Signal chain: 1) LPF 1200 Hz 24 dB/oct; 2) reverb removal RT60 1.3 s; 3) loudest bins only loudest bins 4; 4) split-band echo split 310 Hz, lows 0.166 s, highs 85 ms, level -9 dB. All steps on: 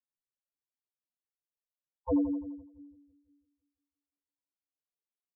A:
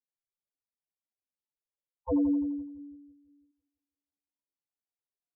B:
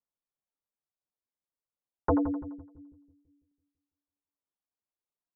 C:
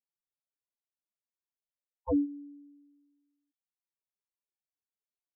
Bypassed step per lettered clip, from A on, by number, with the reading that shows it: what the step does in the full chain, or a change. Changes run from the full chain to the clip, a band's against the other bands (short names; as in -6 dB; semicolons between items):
2, 250 Hz band +3.0 dB; 3, 250 Hz band -9.0 dB; 4, echo-to-direct -7.5 dB to none